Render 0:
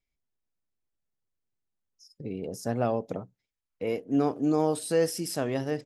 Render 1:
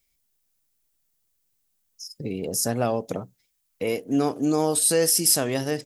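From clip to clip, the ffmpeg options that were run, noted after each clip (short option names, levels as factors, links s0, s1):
-filter_complex "[0:a]asplit=2[s0][s1];[s1]acompressor=threshold=0.02:ratio=6,volume=1.12[s2];[s0][s2]amix=inputs=2:normalize=0,crystalizer=i=3.5:c=0"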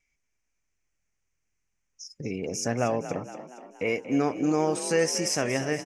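-filter_complex "[0:a]lowpass=f=6100:t=q:w=4.8,highshelf=f=3000:t=q:w=3:g=-9,asplit=7[s0][s1][s2][s3][s4][s5][s6];[s1]adelay=234,afreqshift=42,volume=0.237[s7];[s2]adelay=468,afreqshift=84,volume=0.135[s8];[s3]adelay=702,afreqshift=126,volume=0.0767[s9];[s4]adelay=936,afreqshift=168,volume=0.0442[s10];[s5]adelay=1170,afreqshift=210,volume=0.0251[s11];[s6]adelay=1404,afreqshift=252,volume=0.0143[s12];[s0][s7][s8][s9][s10][s11][s12]amix=inputs=7:normalize=0,volume=0.75"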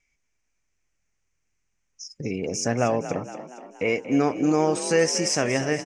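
-af "lowpass=f=9000:w=0.5412,lowpass=f=9000:w=1.3066,volume=1.5"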